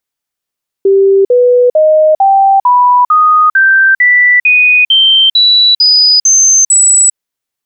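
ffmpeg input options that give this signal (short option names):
-f lavfi -i "aevalsrc='0.668*clip(min(mod(t,0.45),0.4-mod(t,0.45))/0.005,0,1)*sin(2*PI*391*pow(2,floor(t/0.45)/3)*mod(t,0.45))':d=6.3:s=44100"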